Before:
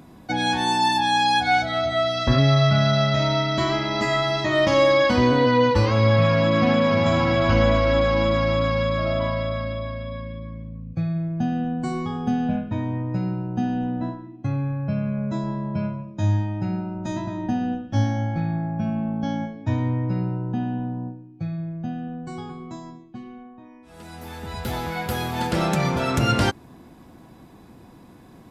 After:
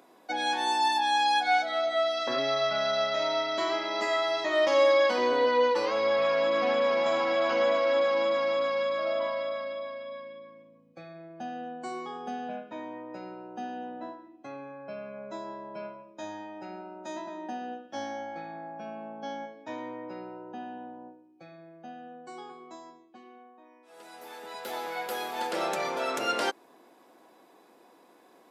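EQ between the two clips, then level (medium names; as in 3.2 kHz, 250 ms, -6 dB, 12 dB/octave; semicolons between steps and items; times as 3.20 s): ladder high-pass 340 Hz, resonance 25%; 0.0 dB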